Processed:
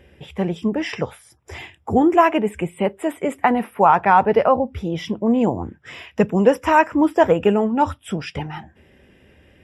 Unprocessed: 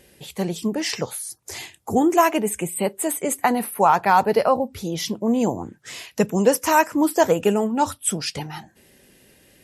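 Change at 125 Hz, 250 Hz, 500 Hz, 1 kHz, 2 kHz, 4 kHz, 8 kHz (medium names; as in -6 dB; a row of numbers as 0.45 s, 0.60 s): +3.5 dB, +3.0 dB, +2.5 dB, +2.5 dB, +2.0 dB, -4.5 dB, under -15 dB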